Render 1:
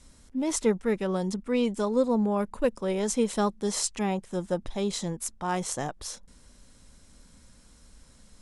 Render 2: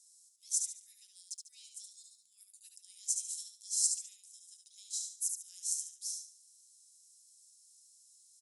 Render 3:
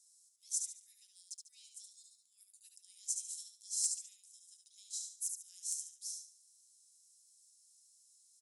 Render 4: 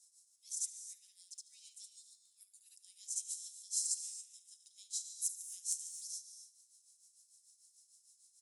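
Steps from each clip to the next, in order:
inverse Chebyshev high-pass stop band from 980 Hz, stop band 80 dB; on a send: feedback echo 72 ms, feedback 33%, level -5 dB
hard clip -19 dBFS, distortion -25 dB; gain -4 dB
tremolo triangle 6.7 Hz, depth 80%; non-linear reverb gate 0.3 s rising, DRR 9.5 dB; gain +3.5 dB

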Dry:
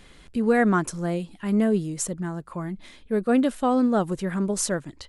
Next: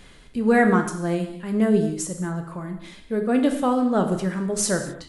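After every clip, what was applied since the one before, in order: tremolo 1.7 Hz, depth 43%; non-linear reverb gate 0.28 s falling, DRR 4.5 dB; gain +2.5 dB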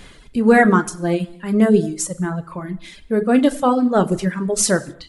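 reverb removal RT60 1.1 s; gain +6.5 dB

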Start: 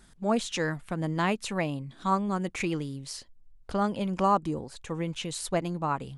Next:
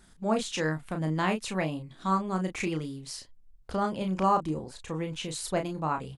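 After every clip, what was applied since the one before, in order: doubler 32 ms -6 dB; gain -1.5 dB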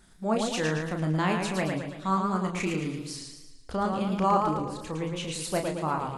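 warbling echo 0.112 s, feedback 50%, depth 104 cents, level -4.5 dB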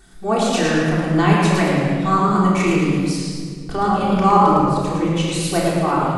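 reverb RT60 1.9 s, pre-delay 3 ms, DRR -3.5 dB; gain +5.5 dB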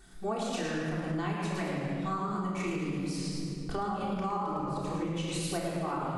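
compressor 10:1, threshold -23 dBFS, peak gain reduction 14.5 dB; gain -6.5 dB

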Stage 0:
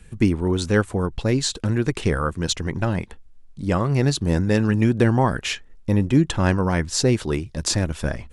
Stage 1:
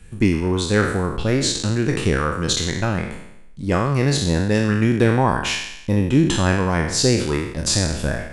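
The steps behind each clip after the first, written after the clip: spectral trails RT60 0.81 s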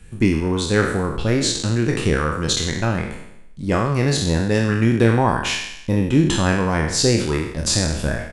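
doubler 26 ms -11.5 dB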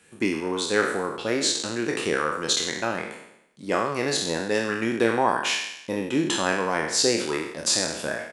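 HPF 350 Hz 12 dB/oct; gain -2 dB

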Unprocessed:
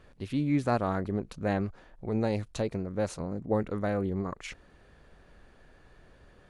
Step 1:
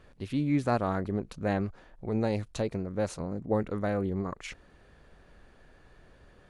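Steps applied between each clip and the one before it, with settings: nothing audible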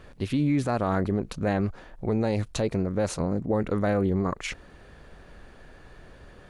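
limiter -24 dBFS, peak gain reduction 9 dB; gain +8 dB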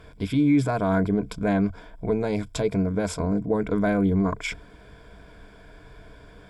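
ripple EQ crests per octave 1.7, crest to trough 12 dB

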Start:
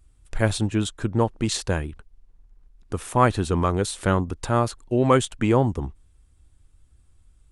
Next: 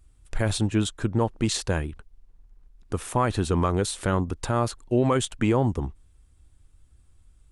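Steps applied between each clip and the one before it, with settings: limiter -12 dBFS, peak gain reduction 7.5 dB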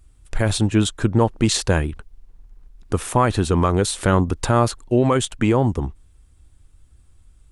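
vocal rider 0.5 s; gain +6.5 dB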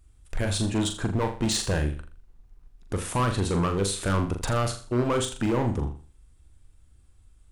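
hard clip -15.5 dBFS, distortion -9 dB; on a send: flutter echo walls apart 7 m, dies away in 0.39 s; on the sum: gain -5.5 dB

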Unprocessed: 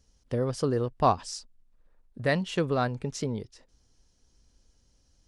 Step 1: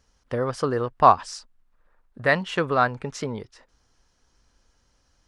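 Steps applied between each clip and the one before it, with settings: bell 1300 Hz +13 dB 2.2 oct; gain -1.5 dB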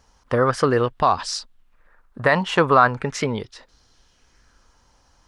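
limiter -13 dBFS, peak gain reduction 11.5 dB; LFO bell 0.4 Hz 870–4200 Hz +8 dB; gain +6 dB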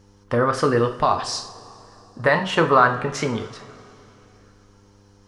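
two-slope reverb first 0.45 s, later 3.2 s, from -19 dB, DRR 5 dB; buzz 100 Hz, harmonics 5, -53 dBFS -4 dB/oct; gain -1.5 dB

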